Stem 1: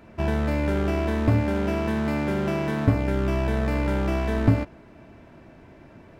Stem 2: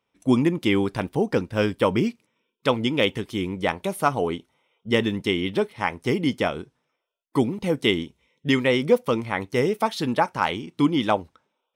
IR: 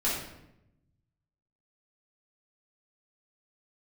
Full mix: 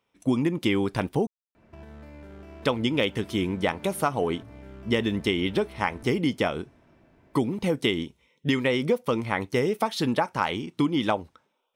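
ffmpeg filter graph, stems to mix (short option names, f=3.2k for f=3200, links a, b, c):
-filter_complex "[0:a]acompressor=threshold=-32dB:ratio=2.5,alimiter=level_in=2dB:limit=-24dB:level=0:latency=1:release=78,volume=-2dB,adelay=1550,volume=-10.5dB[a];[1:a]volume=1.5dB,asplit=3[b][c][d];[b]atrim=end=1.27,asetpts=PTS-STARTPTS,afade=t=out:st=1.266:d=0.004:c=hsin[e];[c]atrim=start=1.27:end=2.6,asetpts=PTS-STARTPTS,volume=0[f];[d]atrim=start=2.6,asetpts=PTS-STARTPTS,afade=t=in:d=0.004:c=hsin[g];[e][f][g]concat=n=3:v=0:a=1[h];[a][h]amix=inputs=2:normalize=0,acompressor=threshold=-20dB:ratio=5"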